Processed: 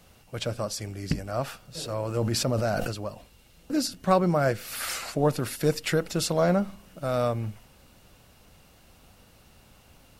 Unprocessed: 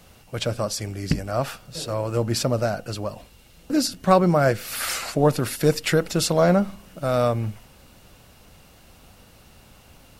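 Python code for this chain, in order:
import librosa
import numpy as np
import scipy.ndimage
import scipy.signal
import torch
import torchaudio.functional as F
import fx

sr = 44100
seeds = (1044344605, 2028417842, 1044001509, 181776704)

y = fx.sustainer(x, sr, db_per_s=23.0, at=(1.77, 2.91), fade=0.02)
y = y * librosa.db_to_amplitude(-5.0)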